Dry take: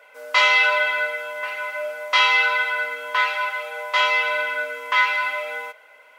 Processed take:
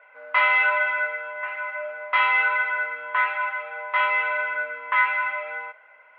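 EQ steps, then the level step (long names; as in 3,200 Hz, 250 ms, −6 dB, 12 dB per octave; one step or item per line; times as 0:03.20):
low-pass filter 2,200 Hz 24 dB per octave
low-shelf EQ 320 Hz −9.5 dB
parametric band 420 Hz −8 dB 0.66 octaves
0.0 dB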